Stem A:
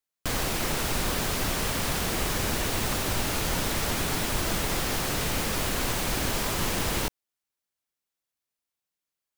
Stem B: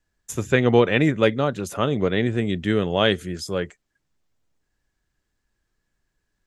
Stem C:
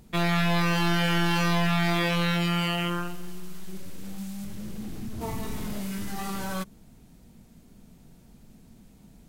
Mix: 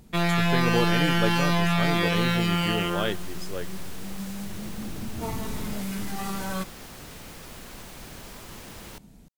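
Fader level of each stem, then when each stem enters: -15.0, -9.5, +1.0 dB; 1.90, 0.00, 0.00 s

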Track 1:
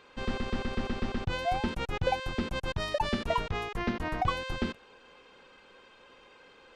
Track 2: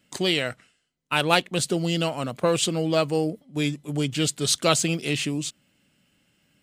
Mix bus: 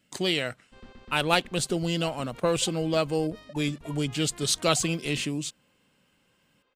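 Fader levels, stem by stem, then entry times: -16.5, -3.0 dB; 0.55, 0.00 s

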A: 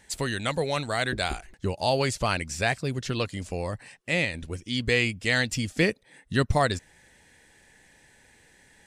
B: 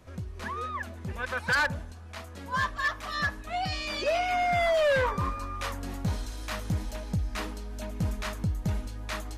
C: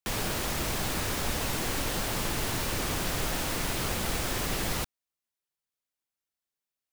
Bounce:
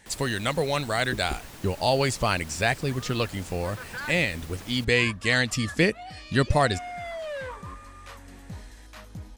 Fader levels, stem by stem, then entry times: +1.5, -10.5, -14.0 dB; 0.00, 2.45, 0.00 s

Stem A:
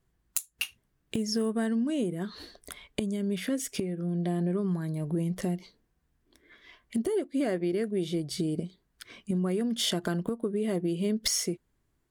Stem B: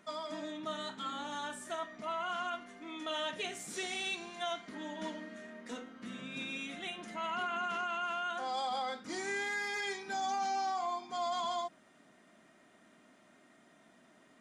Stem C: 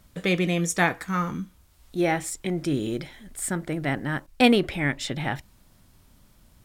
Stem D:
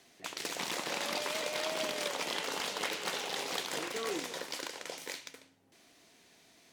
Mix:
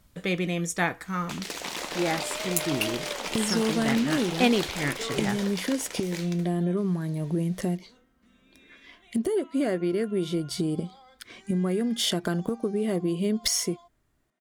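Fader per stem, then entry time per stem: +2.5, -17.5, -4.0, +2.5 dB; 2.20, 2.20, 0.00, 1.05 s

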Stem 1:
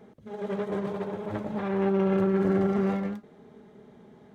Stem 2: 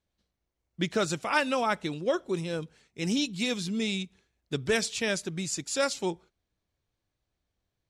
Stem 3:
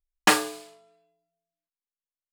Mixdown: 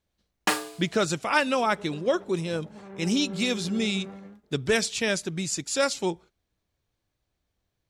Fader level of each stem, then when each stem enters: -14.5, +3.0, -5.5 dB; 1.20, 0.00, 0.20 s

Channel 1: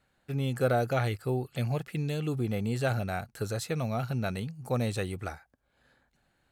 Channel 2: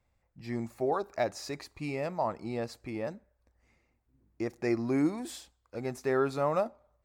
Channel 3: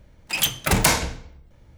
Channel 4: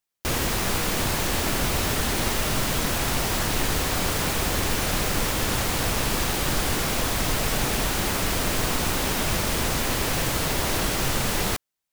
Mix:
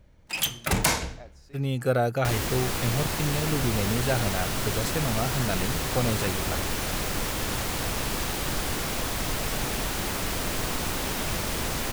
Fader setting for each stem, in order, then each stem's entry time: +2.5, -18.0, -5.0, -4.5 dB; 1.25, 0.00, 0.00, 2.00 s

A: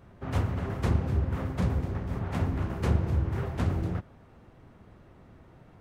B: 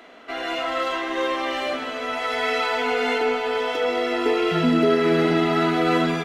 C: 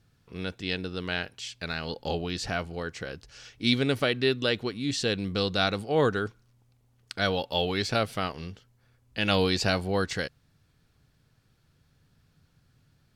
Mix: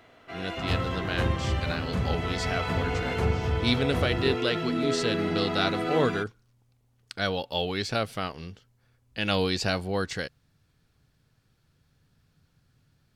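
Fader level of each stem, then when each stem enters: -1.5, -9.5, -1.5 dB; 0.35, 0.00, 0.00 s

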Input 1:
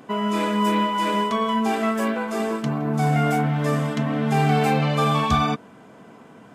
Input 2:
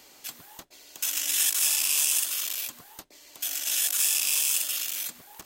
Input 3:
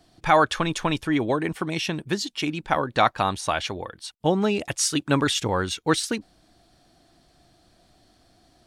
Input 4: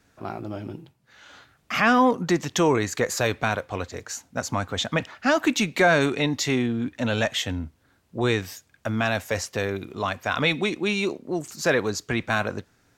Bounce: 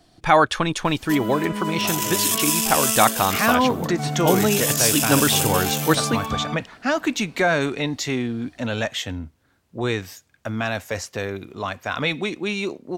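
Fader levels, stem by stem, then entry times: -7.0, +2.0, +2.5, -1.0 dB; 1.00, 0.85, 0.00, 1.60 s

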